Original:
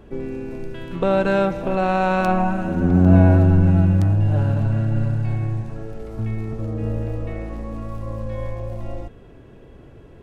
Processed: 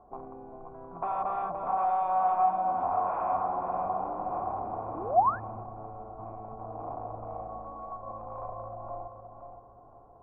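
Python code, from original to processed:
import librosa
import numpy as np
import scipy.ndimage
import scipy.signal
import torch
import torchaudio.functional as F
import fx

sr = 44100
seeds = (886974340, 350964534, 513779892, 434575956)

y = fx.wiener(x, sr, points=15)
y = fx.highpass(y, sr, hz=200.0, slope=12, at=(1.84, 3.89))
y = 10.0 ** (-21.5 / 20.0) * (np.abs((y / 10.0 ** (-21.5 / 20.0) + 3.0) % 4.0 - 2.0) - 1.0)
y = fx.echo_feedback(y, sr, ms=521, feedback_pct=34, wet_db=-7.5)
y = fx.spec_paint(y, sr, seeds[0], shape='rise', start_s=4.94, length_s=0.46, low_hz=270.0, high_hz=1800.0, level_db=-24.0)
y = fx.formant_cascade(y, sr, vowel='a')
y = fx.peak_eq(y, sr, hz=1400.0, db=9.5, octaves=0.23)
y = F.gain(torch.from_numpy(y), 8.0).numpy()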